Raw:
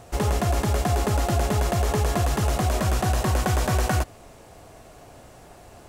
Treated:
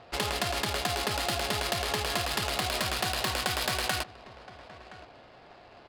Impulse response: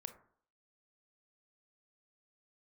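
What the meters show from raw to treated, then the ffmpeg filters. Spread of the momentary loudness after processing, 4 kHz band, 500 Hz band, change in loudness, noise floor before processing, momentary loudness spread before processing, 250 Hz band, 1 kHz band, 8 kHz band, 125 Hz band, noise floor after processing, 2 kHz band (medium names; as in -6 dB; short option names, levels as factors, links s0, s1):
19 LU, +5.5 dB, -7.0 dB, -5.5 dB, -48 dBFS, 1 LU, -11.0 dB, -5.0 dB, -2.5 dB, -15.5 dB, -53 dBFS, +1.0 dB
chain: -filter_complex "[0:a]highshelf=f=3400:g=8,aresample=11025,aresample=44100,asplit=2[s0][s1];[s1]aecho=0:1:1020:0.0944[s2];[s0][s2]amix=inputs=2:normalize=0,acrusher=bits=7:mode=log:mix=0:aa=0.000001,adynamicsmooth=sensitivity=5:basefreq=1500,crystalizer=i=9.5:c=0,acompressor=threshold=0.126:ratio=6,lowshelf=f=110:g=-11.5,volume=0.501"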